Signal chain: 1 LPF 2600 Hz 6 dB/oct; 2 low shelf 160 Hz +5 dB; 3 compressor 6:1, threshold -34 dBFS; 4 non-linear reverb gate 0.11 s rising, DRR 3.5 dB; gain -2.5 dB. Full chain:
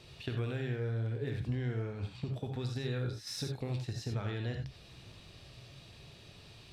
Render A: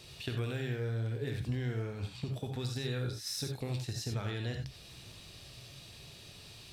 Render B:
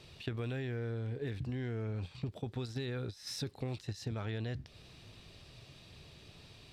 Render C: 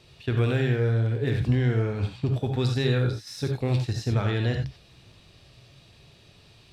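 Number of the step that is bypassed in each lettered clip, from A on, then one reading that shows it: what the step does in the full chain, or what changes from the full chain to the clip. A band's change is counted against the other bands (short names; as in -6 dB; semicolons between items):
1, momentary loudness spread change -3 LU; 4, momentary loudness spread change -1 LU; 3, momentary loudness spread change -12 LU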